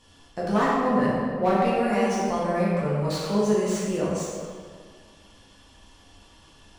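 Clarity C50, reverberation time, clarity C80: -2.0 dB, 2.0 s, 0.0 dB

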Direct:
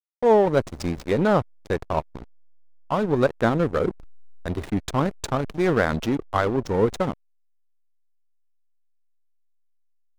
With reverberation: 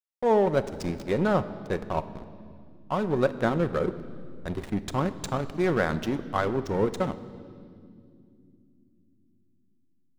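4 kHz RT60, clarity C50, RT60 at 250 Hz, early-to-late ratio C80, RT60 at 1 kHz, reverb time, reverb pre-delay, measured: 2.1 s, 14.0 dB, 5.0 s, 15.5 dB, 2.0 s, 2.5 s, 5 ms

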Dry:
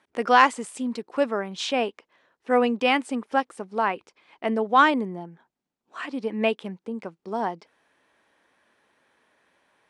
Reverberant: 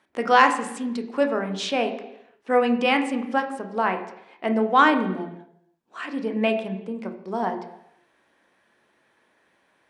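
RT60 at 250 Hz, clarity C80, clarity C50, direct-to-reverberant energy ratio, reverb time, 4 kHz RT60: 0.80 s, 12.0 dB, 9.5 dB, 5.0 dB, 0.80 s, 0.90 s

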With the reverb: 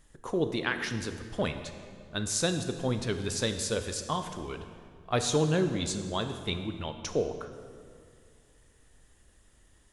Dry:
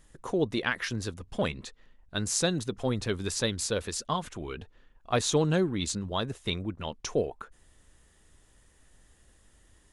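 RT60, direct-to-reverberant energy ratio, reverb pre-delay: 2.1 s, 7.5 dB, 20 ms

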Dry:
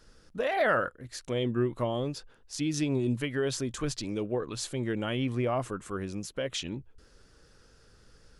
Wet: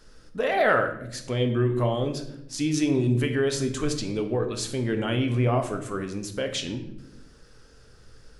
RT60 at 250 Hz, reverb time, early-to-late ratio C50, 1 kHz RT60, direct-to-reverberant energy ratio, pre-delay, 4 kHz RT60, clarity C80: 1.2 s, 0.80 s, 9.0 dB, 0.60 s, 5.0 dB, 3 ms, 0.55 s, 12.0 dB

